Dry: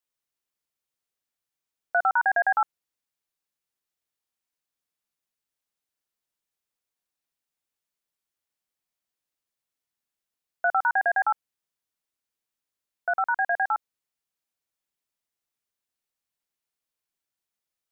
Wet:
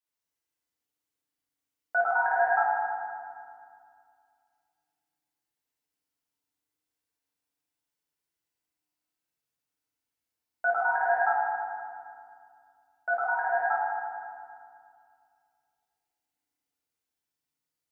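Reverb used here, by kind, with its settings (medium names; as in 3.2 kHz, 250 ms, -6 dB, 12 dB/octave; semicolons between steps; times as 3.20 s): FDN reverb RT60 2.2 s, low-frequency decay 1.5×, high-frequency decay 0.7×, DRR -7 dB; trim -7.5 dB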